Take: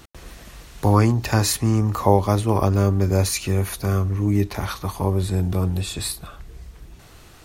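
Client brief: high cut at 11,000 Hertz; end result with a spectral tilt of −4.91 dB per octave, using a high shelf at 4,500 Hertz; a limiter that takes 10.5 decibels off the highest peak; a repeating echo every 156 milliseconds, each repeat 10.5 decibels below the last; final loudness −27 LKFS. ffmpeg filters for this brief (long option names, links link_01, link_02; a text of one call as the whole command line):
ffmpeg -i in.wav -af "lowpass=11000,highshelf=frequency=4500:gain=7.5,alimiter=limit=-11.5dB:level=0:latency=1,aecho=1:1:156|312|468:0.299|0.0896|0.0269,volume=-4.5dB" out.wav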